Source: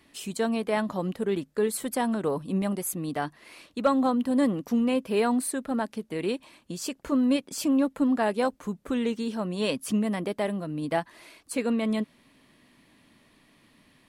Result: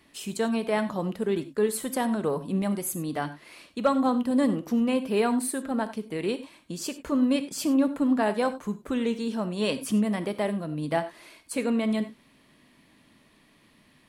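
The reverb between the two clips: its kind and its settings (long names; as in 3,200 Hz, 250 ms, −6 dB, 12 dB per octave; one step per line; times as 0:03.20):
reverb whose tail is shaped and stops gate 120 ms flat, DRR 11 dB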